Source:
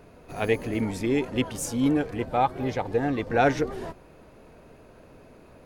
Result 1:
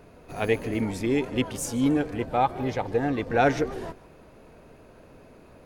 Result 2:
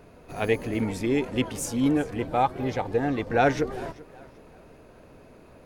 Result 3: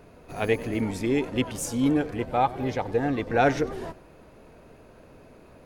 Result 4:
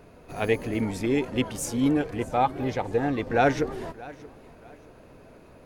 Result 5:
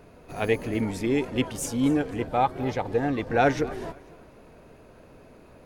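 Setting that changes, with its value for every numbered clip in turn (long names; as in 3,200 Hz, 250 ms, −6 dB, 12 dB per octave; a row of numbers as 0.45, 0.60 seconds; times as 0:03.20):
feedback echo with a swinging delay time, delay time: 150, 387, 94, 629, 251 milliseconds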